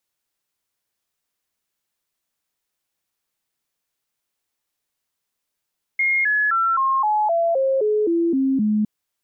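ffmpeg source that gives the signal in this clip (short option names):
-f lavfi -i "aevalsrc='0.158*clip(min(mod(t,0.26),0.26-mod(t,0.26))/0.005,0,1)*sin(2*PI*2140*pow(2,-floor(t/0.26)/3)*mod(t,0.26))':d=2.86:s=44100"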